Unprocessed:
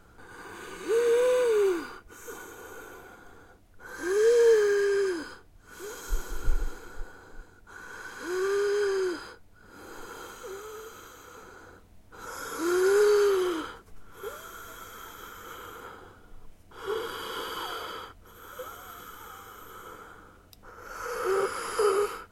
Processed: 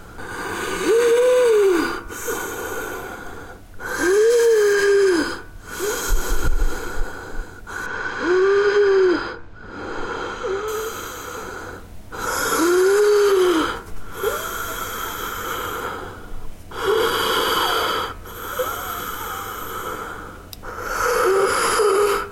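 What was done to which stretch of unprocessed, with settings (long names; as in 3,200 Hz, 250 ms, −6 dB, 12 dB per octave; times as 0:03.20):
0:04.30–0:04.73: high-shelf EQ 8,900 Hz +8.5 dB
0:07.86–0:10.68: high-frequency loss of the air 160 metres
whole clip: hum removal 67.39 Hz, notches 39; downward compressor, threshold −25 dBFS; boost into a limiter +25.5 dB; level −8.5 dB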